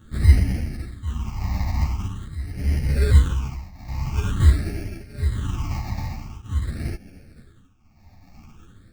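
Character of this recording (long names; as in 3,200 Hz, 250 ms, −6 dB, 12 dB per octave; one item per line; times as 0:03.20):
aliases and images of a low sample rate 1,000 Hz, jitter 0%
phaser sweep stages 8, 0.46 Hz, lowest notch 420–1,100 Hz
tremolo triangle 0.74 Hz, depth 90%
a shimmering, thickened sound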